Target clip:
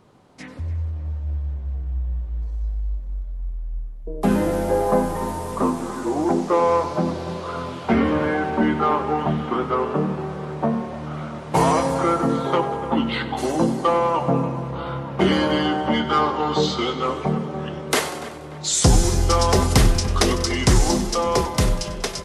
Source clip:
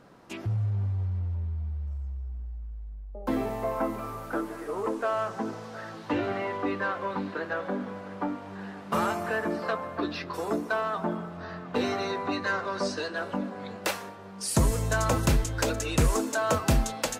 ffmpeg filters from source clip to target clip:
ffmpeg -i in.wav -filter_complex "[0:a]asetrate=34089,aresample=44100,asplit=2[link_01][link_02];[link_02]aecho=0:1:96|192|288|384|480|576:0.188|0.105|0.0591|0.0331|0.0185|0.0104[link_03];[link_01][link_03]amix=inputs=2:normalize=0,dynaudnorm=framelen=460:gausssize=9:maxgain=9.5dB,highshelf=frequency=5700:gain=5,asplit=2[link_04][link_05];[link_05]adelay=293,lowpass=frequency=2400:poles=1,volume=-14.5dB,asplit=2[link_06][link_07];[link_07]adelay=293,lowpass=frequency=2400:poles=1,volume=0.5,asplit=2[link_08][link_09];[link_09]adelay=293,lowpass=frequency=2400:poles=1,volume=0.5,asplit=2[link_10][link_11];[link_11]adelay=293,lowpass=frequency=2400:poles=1,volume=0.5,asplit=2[link_12][link_13];[link_13]adelay=293,lowpass=frequency=2400:poles=1,volume=0.5[link_14];[link_06][link_08][link_10][link_12][link_14]amix=inputs=5:normalize=0[link_15];[link_04][link_15]amix=inputs=2:normalize=0" out.wav

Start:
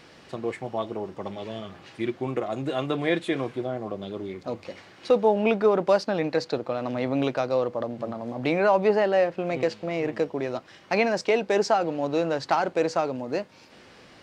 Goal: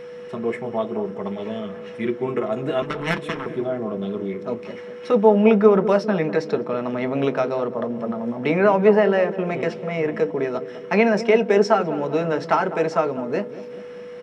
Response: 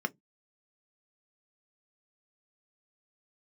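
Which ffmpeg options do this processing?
-filter_complex "[0:a]asplit=2[link_01][link_02];[link_02]adelay=201,lowpass=frequency=920:poles=1,volume=-12dB,asplit=2[link_03][link_04];[link_04]adelay=201,lowpass=frequency=920:poles=1,volume=0.54,asplit=2[link_05][link_06];[link_06]adelay=201,lowpass=frequency=920:poles=1,volume=0.54,asplit=2[link_07][link_08];[link_08]adelay=201,lowpass=frequency=920:poles=1,volume=0.54,asplit=2[link_09][link_10];[link_10]adelay=201,lowpass=frequency=920:poles=1,volume=0.54,asplit=2[link_11][link_12];[link_12]adelay=201,lowpass=frequency=920:poles=1,volume=0.54[link_13];[link_01][link_03][link_05][link_07][link_09][link_11][link_13]amix=inputs=7:normalize=0,asettb=1/sr,asplit=3[link_14][link_15][link_16];[link_14]atrim=end=2.824[link_17];[link_15]atrim=start=2.82:end=3.46,asetpts=PTS-STARTPTS,afade=type=in:duration=0.004:curve=qsin,afade=type=out:start_time=0.636:duration=0.004:curve=qsin,aeval=exprs='0.282*(cos(1*acos(clip(val(0)/0.282,-1,1)))-cos(1*PI/2))+0.112*(cos(3*acos(clip(val(0)/0.282,-1,1)))-cos(3*PI/2))+0.02*(cos(5*acos(clip(val(0)/0.282,-1,1)))-cos(5*PI/2))+0.0447*(cos(7*acos(clip(val(0)/0.282,-1,1)))-cos(7*PI/2))':channel_layout=same[link_18];[link_16]atrim=start=3.456[link_19];[link_17][link_18]acrossfade=duration=0.004:curve1=hsin:curve2=qsin[link_20];[link_20][link_19]acrossfade=duration=0.004:curve1=qsin:curve2=hsin[link_21];[1:a]atrim=start_sample=2205[link_22];[link_21][link_22]afir=irnorm=-1:irlink=0,aeval=exprs='val(0)+0.0224*sin(2*PI*490*n/s)':channel_layout=same,volume=-1dB"

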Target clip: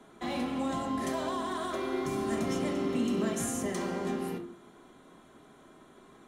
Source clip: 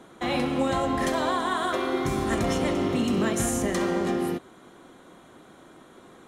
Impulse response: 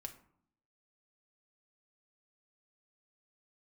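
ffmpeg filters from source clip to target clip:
-filter_complex "[1:a]atrim=start_sample=2205,asetrate=52920,aresample=44100[link_01];[0:a][link_01]afir=irnorm=-1:irlink=0,acrossover=split=110|760|4100[link_02][link_03][link_04][link_05];[link_02]acompressor=threshold=-57dB:ratio=6[link_06];[link_04]asoftclip=type=tanh:threshold=-38.5dB[link_07];[link_06][link_03][link_07][link_05]amix=inputs=4:normalize=0"

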